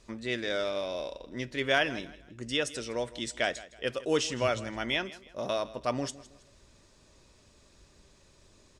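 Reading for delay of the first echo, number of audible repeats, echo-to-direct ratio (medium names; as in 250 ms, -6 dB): 161 ms, 2, -17.5 dB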